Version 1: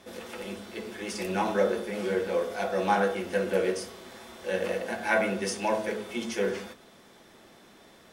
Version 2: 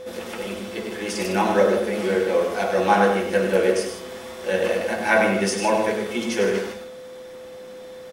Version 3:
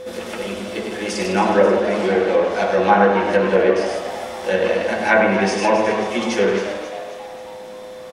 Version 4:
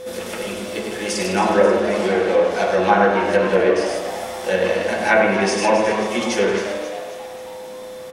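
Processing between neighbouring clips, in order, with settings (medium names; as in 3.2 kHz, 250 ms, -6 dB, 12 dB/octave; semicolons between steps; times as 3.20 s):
whistle 510 Hz -41 dBFS; on a send: loudspeakers at several distances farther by 34 m -7 dB, 53 m -10 dB; on the sum: trim +6.5 dB
low-pass that closes with the level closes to 2.5 kHz, closed at -14 dBFS; frequency-shifting echo 268 ms, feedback 53%, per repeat +110 Hz, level -11 dB; trim +3.5 dB
treble shelf 6.9 kHz +10 dB; on a send at -9 dB: reverberation, pre-delay 33 ms; on the sum: trim -1 dB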